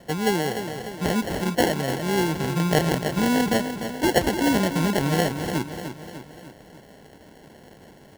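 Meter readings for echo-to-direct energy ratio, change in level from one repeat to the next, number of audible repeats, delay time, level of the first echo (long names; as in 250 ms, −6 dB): −7.5 dB, −5.5 dB, 4, 298 ms, −9.0 dB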